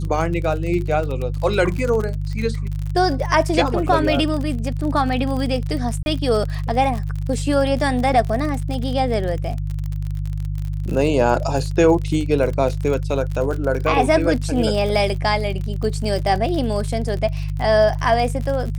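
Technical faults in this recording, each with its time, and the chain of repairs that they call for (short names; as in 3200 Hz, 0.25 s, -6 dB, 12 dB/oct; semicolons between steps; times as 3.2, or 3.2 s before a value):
crackle 47/s -25 dBFS
hum 50 Hz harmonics 3 -24 dBFS
6.03–6.06 gap 31 ms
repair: de-click; de-hum 50 Hz, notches 3; interpolate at 6.03, 31 ms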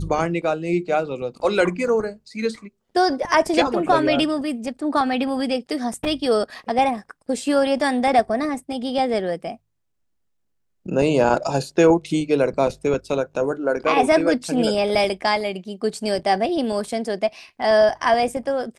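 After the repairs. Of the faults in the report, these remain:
none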